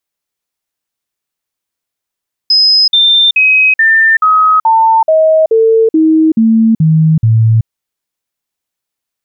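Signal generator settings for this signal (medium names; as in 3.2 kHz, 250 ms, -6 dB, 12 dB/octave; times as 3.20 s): stepped sine 5.07 kHz down, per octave 2, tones 12, 0.38 s, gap 0.05 s -4.5 dBFS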